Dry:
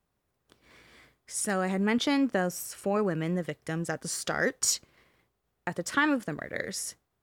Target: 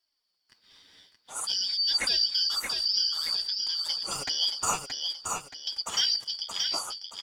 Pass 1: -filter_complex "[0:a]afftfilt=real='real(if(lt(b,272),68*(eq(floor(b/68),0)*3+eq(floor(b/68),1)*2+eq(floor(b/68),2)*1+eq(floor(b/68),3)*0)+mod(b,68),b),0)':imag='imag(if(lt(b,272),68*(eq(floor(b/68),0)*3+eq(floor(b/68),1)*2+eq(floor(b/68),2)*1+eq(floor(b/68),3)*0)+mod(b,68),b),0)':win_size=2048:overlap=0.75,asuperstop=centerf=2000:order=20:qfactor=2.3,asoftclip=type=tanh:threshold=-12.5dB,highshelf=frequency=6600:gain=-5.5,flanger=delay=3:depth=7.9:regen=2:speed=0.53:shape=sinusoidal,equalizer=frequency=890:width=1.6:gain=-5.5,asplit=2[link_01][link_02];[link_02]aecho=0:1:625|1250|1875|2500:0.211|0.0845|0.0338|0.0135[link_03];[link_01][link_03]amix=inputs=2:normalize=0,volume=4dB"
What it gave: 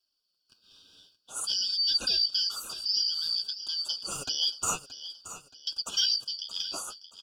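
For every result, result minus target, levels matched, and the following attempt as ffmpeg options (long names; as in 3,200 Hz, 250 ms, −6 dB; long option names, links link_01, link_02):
2,000 Hz band −6.5 dB; echo-to-direct −9 dB; 1,000 Hz band −5.0 dB
-filter_complex "[0:a]afftfilt=real='real(if(lt(b,272),68*(eq(floor(b/68),0)*3+eq(floor(b/68),1)*2+eq(floor(b/68),2)*1+eq(floor(b/68),3)*0)+mod(b,68),b),0)':imag='imag(if(lt(b,272),68*(eq(floor(b/68),0)*3+eq(floor(b/68),1)*2+eq(floor(b/68),2)*1+eq(floor(b/68),3)*0)+mod(b,68),b),0)':win_size=2048:overlap=0.75,asoftclip=type=tanh:threshold=-12.5dB,highshelf=frequency=6600:gain=-5.5,flanger=delay=3:depth=7.9:regen=2:speed=0.53:shape=sinusoidal,equalizer=frequency=890:width=1.6:gain=-5.5,asplit=2[link_01][link_02];[link_02]aecho=0:1:625|1250|1875|2500:0.211|0.0845|0.0338|0.0135[link_03];[link_01][link_03]amix=inputs=2:normalize=0,volume=4dB"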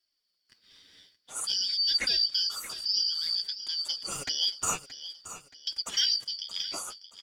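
echo-to-direct −9 dB; 1,000 Hz band −5.0 dB
-filter_complex "[0:a]afftfilt=real='real(if(lt(b,272),68*(eq(floor(b/68),0)*3+eq(floor(b/68),1)*2+eq(floor(b/68),2)*1+eq(floor(b/68),3)*0)+mod(b,68),b),0)':imag='imag(if(lt(b,272),68*(eq(floor(b/68),0)*3+eq(floor(b/68),1)*2+eq(floor(b/68),2)*1+eq(floor(b/68),3)*0)+mod(b,68),b),0)':win_size=2048:overlap=0.75,asoftclip=type=tanh:threshold=-12.5dB,highshelf=frequency=6600:gain=-5.5,flanger=delay=3:depth=7.9:regen=2:speed=0.53:shape=sinusoidal,equalizer=frequency=890:width=1.6:gain=-5.5,asplit=2[link_01][link_02];[link_02]aecho=0:1:625|1250|1875|2500|3125:0.596|0.238|0.0953|0.0381|0.0152[link_03];[link_01][link_03]amix=inputs=2:normalize=0,volume=4dB"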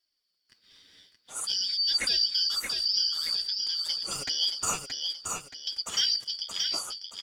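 1,000 Hz band −4.5 dB
-filter_complex "[0:a]afftfilt=real='real(if(lt(b,272),68*(eq(floor(b/68),0)*3+eq(floor(b/68),1)*2+eq(floor(b/68),2)*1+eq(floor(b/68),3)*0)+mod(b,68),b),0)':imag='imag(if(lt(b,272),68*(eq(floor(b/68),0)*3+eq(floor(b/68),1)*2+eq(floor(b/68),2)*1+eq(floor(b/68),3)*0)+mod(b,68),b),0)':win_size=2048:overlap=0.75,asoftclip=type=tanh:threshold=-12.5dB,highshelf=frequency=6600:gain=-5.5,flanger=delay=3:depth=7.9:regen=2:speed=0.53:shape=sinusoidal,equalizer=frequency=890:width=1.6:gain=2.5,asplit=2[link_01][link_02];[link_02]aecho=0:1:625|1250|1875|2500|3125:0.596|0.238|0.0953|0.0381|0.0152[link_03];[link_01][link_03]amix=inputs=2:normalize=0,volume=4dB"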